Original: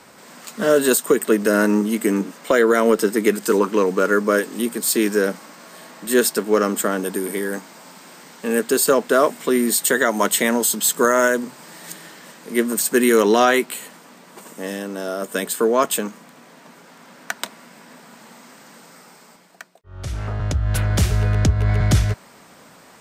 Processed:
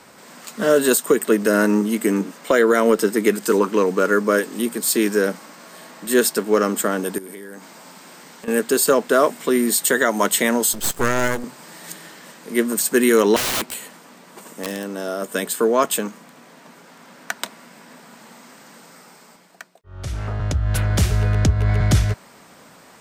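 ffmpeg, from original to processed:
-filter_complex "[0:a]asettb=1/sr,asplit=3[s0][s1][s2];[s0]atrim=end=7.184[s3];[s1]atrim=start=7.18:end=8.48,asetpts=PTS-STARTPTS,afade=t=in:d=0.004:c=qsin,afade=t=out:st=1.296:d=0.004:c=qsin,acompressor=threshold=0.0251:ratio=12:attack=3.2:release=140:knee=1:detection=peak[s4];[s2]atrim=start=8.476[s5];[s3][s4]acrossfade=d=0.004:c1=hsin:c2=qsin[s6];[s6][s5]acrossfade=d=0.004:c1=qsin:c2=hsin,asettb=1/sr,asplit=3[s7][s8][s9];[s7]atrim=end=10.734[s10];[s8]atrim=start=10.73:end=11.44,asetpts=PTS-STARTPTS,afade=t=in:d=0.004:c=qsin,afade=t=out:st=0.706:d=0.004:c=qsin,aeval=exprs='max(val(0),0)':c=same[s11];[s9]atrim=start=11.436[s12];[s10][s11]acrossfade=d=0.004:c1=hsin:c2=qsin[s13];[s13][s12]acrossfade=d=0.004:c1=qsin:c2=hsin,asettb=1/sr,asplit=3[s14][s15][s16];[s14]atrim=end=13.364[s17];[s15]atrim=start=13.36:end=14.88,asetpts=PTS-STARTPTS,afade=t=in:d=0.004:c=qsin,afade=t=out:st=1.516:d=0.004:c=qsin,aeval=exprs='(mod(7.5*val(0)+1,2)-1)/7.5':c=same[s18];[s16]atrim=start=14.876[s19];[s17][s18]acrossfade=d=0.004:c1=hsin:c2=qsin[s20];[s20][s19]acrossfade=d=0.004:c1=qsin:c2=hsin"

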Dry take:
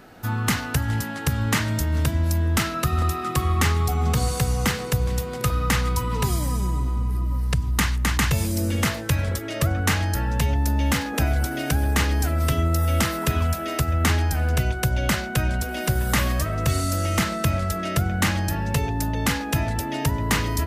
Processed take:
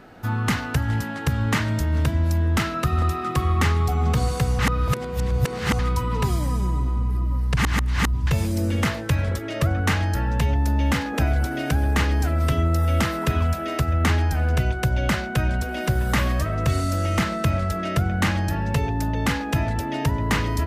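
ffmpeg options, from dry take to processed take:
-filter_complex "[0:a]asplit=5[s0][s1][s2][s3][s4];[s0]atrim=end=4.592[s5];[s1]atrim=start=4.588:end=5.792,asetpts=PTS-STARTPTS,areverse[s6];[s2]atrim=start=5.788:end=7.572[s7];[s3]atrim=start=7.568:end=8.272,asetpts=PTS-STARTPTS,areverse[s8];[s4]atrim=start=8.268[s9];[s5][s6]acrossfade=d=0.004:c1=hsin:c2=hsin[s10];[s10][s7]acrossfade=d=0.004:c1=hsin:c2=hsin[s11];[s11][s8]acrossfade=d=0.004:c1=hsin:c2=hsin[s12];[s12][s9]acrossfade=d=0.004:c1=hsin:c2=hsin,acontrast=29,highshelf=f=5200:g=-10.5,volume=0.631"

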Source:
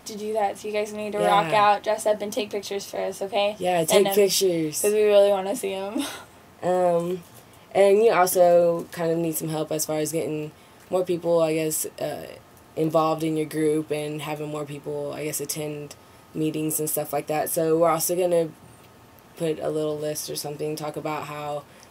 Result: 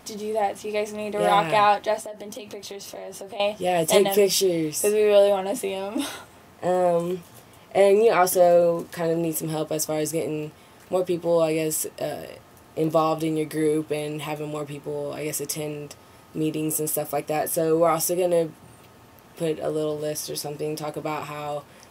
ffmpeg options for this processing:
-filter_complex "[0:a]asettb=1/sr,asplit=3[s0][s1][s2];[s0]atrim=end=1.984[s3];[s1]atrim=start=1.98:end=3.4,asetpts=PTS-STARTPTS,afade=t=in:d=0.004:c=qsin,afade=t=out:st=1.416:d=0.004:c=qsin,acompressor=threshold=0.0251:ratio=10:attack=3.2:release=140:knee=1:detection=peak[s4];[s2]atrim=start=3.396[s5];[s3][s4]acrossfade=d=0.004:c1=hsin:c2=qsin[s6];[s6][s5]acrossfade=d=0.004:c1=qsin:c2=hsin"

